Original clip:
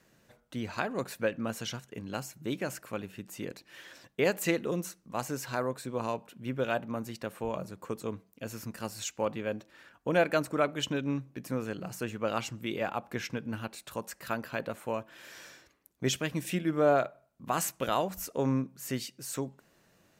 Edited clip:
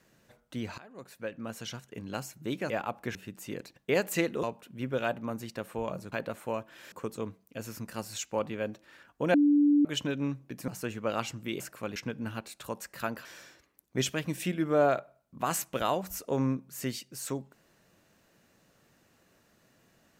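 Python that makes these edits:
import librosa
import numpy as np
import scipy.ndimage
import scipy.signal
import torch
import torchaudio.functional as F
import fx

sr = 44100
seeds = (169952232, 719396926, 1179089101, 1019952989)

y = fx.edit(x, sr, fx.fade_in_from(start_s=0.78, length_s=1.27, floor_db=-23.5),
    fx.swap(start_s=2.7, length_s=0.36, other_s=12.78, other_length_s=0.45),
    fx.cut(start_s=3.67, length_s=0.39),
    fx.cut(start_s=4.73, length_s=1.36),
    fx.bleep(start_s=10.2, length_s=0.51, hz=291.0, db=-19.0),
    fx.cut(start_s=11.54, length_s=0.32),
    fx.move(start_s=14.52, length_s=0.8, to_s=7.78), tone=tone)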